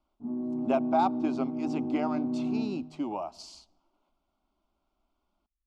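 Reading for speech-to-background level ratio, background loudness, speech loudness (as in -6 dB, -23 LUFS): 0.0 dB, -32.5 LUFS, -32.5 LUFS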